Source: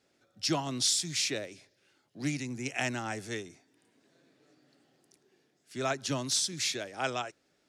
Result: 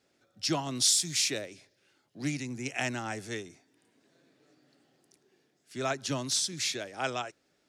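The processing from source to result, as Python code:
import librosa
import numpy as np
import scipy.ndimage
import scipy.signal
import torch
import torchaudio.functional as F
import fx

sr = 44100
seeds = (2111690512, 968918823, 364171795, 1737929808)

y = fx.high_shelf(x, sr, hz=7800.0, db=9.0, at=(0.75, 1.42))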